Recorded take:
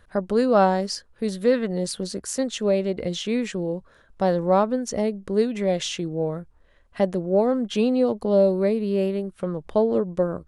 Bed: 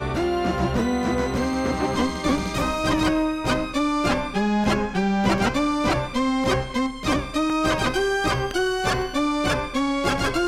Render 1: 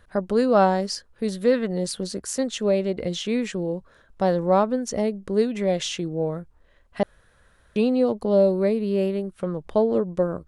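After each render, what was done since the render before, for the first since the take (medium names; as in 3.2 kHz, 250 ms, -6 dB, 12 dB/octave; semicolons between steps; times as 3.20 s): 7.03–7.76 s: room tone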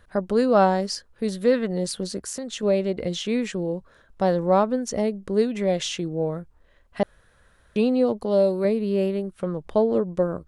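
2.20–2.63 s: compression, threshold -28 dBFS; 8.23–8.65 s: tilt EQ +1.5 dB/octave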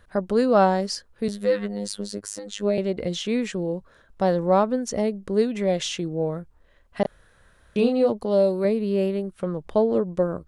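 1.28–2.78 s: robot voice 102 Hz; 7.02–8.10 s: doubling 30 ms -4 dB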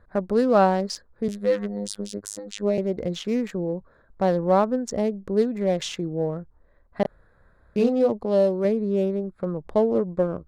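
local Wiener filter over 15 samples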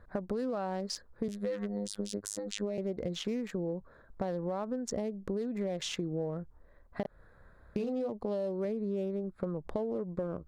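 peak limiter -16 dBFS, peak gain reduction 8.5 dB; compression 10:1, threshold -31 dBFS, peak gain reduction 12 dB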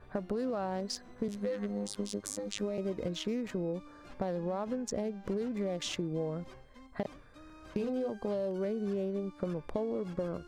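add bed -32 dB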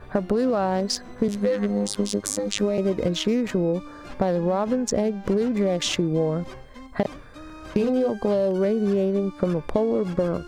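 trim +12 dB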